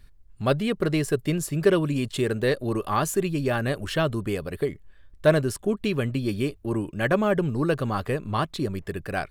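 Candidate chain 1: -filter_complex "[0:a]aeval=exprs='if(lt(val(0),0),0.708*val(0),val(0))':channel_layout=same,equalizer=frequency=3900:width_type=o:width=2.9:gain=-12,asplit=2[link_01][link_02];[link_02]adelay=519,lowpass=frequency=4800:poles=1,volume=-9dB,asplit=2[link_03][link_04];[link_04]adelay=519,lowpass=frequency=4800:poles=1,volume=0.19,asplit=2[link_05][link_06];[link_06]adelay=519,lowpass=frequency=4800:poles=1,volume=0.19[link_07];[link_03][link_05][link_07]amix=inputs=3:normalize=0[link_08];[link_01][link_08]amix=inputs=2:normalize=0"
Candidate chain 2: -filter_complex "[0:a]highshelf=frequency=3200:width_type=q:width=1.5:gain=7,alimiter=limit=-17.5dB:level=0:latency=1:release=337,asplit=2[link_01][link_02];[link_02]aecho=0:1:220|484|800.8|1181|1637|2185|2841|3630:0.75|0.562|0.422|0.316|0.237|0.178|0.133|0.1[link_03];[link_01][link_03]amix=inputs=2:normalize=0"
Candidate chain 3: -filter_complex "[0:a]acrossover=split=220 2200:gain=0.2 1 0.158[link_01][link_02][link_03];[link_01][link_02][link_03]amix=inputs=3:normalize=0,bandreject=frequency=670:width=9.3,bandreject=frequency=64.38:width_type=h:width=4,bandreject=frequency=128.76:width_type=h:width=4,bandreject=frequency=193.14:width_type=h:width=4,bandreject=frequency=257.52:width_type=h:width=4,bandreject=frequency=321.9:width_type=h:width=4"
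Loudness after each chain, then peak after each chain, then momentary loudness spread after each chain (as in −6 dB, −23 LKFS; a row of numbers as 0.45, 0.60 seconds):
−28.0, −26.0, −28.5 LKFS; −8.5, −11.0, −7.0 dBFS; 7, 4, 8 LU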